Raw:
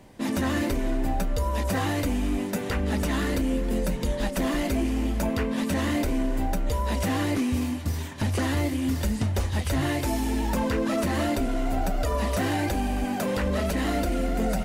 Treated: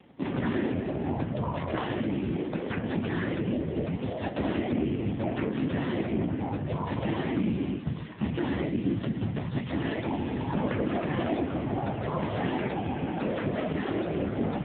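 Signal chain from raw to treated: whisperiser; de-hum 60.17 Hz, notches 39; AMR-NB 5.9 kbps 8000 Hz

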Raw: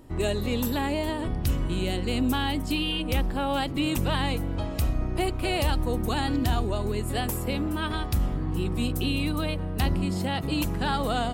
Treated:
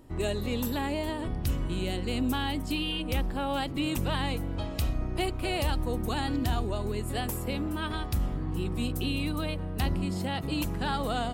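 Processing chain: 4.53–5.26 dynamic EQ 3600 Hz, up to +6 dB, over -48 dBFS, Q 1.1; gain -3.5 dB

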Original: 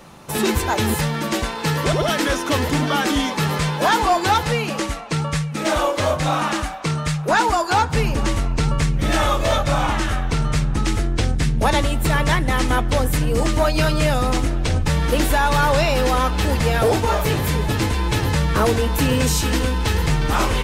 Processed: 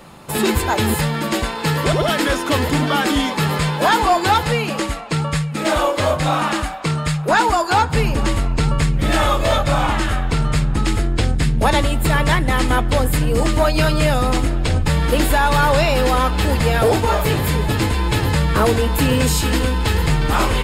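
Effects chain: notch 5900 Hz, Q 6.2; gain +2 dB

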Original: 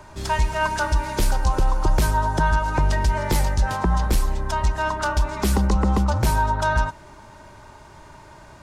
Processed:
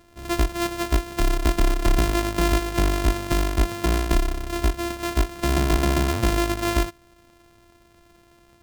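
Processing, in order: sample sorter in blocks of 128 samples; upward expander 1.5:1, over -35 dBFS

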